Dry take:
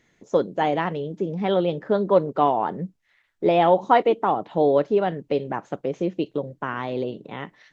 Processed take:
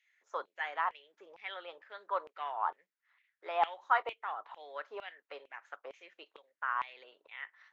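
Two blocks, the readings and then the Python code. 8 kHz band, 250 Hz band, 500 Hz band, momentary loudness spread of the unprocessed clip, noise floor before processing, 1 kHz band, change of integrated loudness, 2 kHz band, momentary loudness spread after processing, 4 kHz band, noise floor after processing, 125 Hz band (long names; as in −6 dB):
can't be measured, −38.0 dB, −23.0 dB, 12 LU, −67 dBFS, −11.5 dB, −14.5 dB, −5.0 dB, 19 LU, −11.5 dB, below −85 dBFS, below −40 dB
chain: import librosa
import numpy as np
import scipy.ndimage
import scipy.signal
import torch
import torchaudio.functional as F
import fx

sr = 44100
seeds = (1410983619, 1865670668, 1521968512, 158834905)

y = scipy.signal.sosfilt(scipy.signal.butter(2, 410.0, 'highpass', fs=sr, output='sos'), x)
y = fx.high_shelf(y, sr, hz=2000.0, db=-11.5)
y = fx.filter_lfo_highpass(y, sr, shape='saw_down', hz=2.2, low_hz=990.0, high_hz=2700.0, q=3.1)
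y = y * librosa.db_to_amplitude(-6.5)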